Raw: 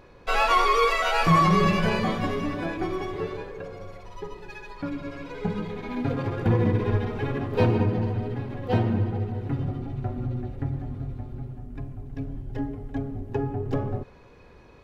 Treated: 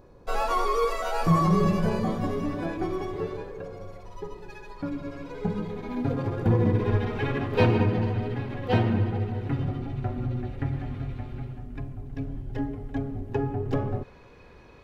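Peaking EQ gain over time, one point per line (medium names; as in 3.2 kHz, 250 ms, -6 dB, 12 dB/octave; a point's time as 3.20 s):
peaking EQ 2.5 kHz 2 oct
2.06 s -13.5 dB
2.66 s -6 dB
6.58 s -6 dB
7.22 s +5 dB
10.33 s +5 dB
10.87 s +12 dB
11.40 s +12 dB
11.92 s +2 dB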